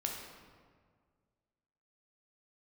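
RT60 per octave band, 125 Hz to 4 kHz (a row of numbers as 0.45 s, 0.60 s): 2.3 s, 2.0 s, 1.9 s, 1.7 s, 1.4 s, 1.0 s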